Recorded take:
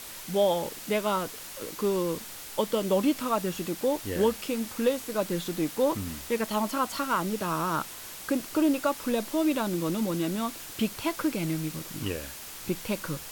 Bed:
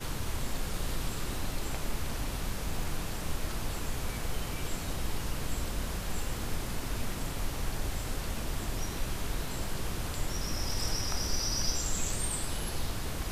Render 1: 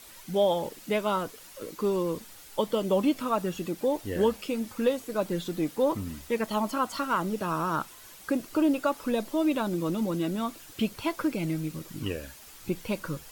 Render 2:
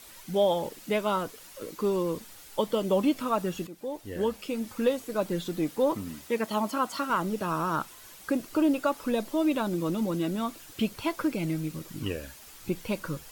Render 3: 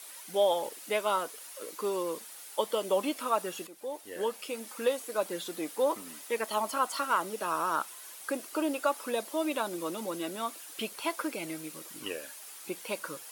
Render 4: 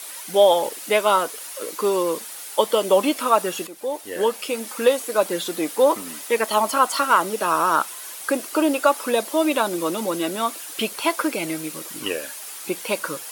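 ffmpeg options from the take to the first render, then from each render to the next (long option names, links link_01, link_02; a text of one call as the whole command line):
ffmpeg -i in.wav -af "afftdn=noise_reduction=9:noise_floor=-42" out.wav
ffmpeg -i in.wav -filter_complex "[0:a]asettb=1/sr,asplit=3[link_01][link_02][link_03];[link_01]atrim=end=5.944[link_04];[link_02]atrim=start=5.94:end=7.1,asetpts=PTS-STARTPTS,afade=type=in:duration=0.004:curve=qsin,afade=type=out:start_time=1.156:duration=0.004:curve=qsin,highpass=130[link_05];[link_03]atrim=start=7.096[link_06];[link_04][link_05]acrossfade=duration=0.004:curve1=hsin:curve2=qsin[link_07];[link_07][link_06]acrossfade=duration=0.004:curve1=qsin:curve2=hsin,asplit=2[link_08][link_09];[link_08]atrim=end=3.67,asetpts=PTS-STARTPTS,afade=type=out:start_time=3.666:duration=0.004:curve=hsin:silence=0.223872[link_10];[link_09]atrim=start=3.67,asetpts=PTS-STARTPTS,afade=type=in:duration=1.08:silence=0.223872[link_11];[link_10][link_11]concat=n=2:v=0:a=1" out.wav
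ffmpeg -i in.wav -af "highpass=470,equalizer=frequency=10000:width_type=o:width=0.43:gain=8" out.wav
ffmpeg -i in.wav -af "volume=11dB" out.wav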